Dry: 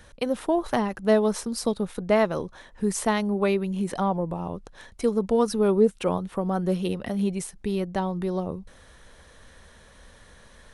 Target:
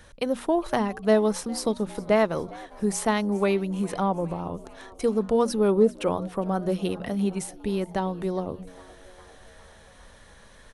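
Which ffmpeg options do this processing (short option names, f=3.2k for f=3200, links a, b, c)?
-filter_complex "[0:a]bandreject=f=60:t=h:w=6,bandreject=f=120:t=h:w=6,bandreject=f=180:t=h:w=6,bandreject=f=240:t=h:w=6,asplit=6[a][b][c][d][e][f];[b]adelay=407,afreqshift=90,volume=-22dB[g];[c]adelay=814,afreqshift=180,volume=-25.9dB[h];[d]adelay=1221,afreqshift=270,volume=-29.8dB[i];[e]adelay=1628,afreqshift=360,volume=-33.6dB[j];[f]adelay=2035,afreqshift=450,volume=-37.5dB[k];[a][g][h][i][j][k]amix=inputs=6:normalize=0"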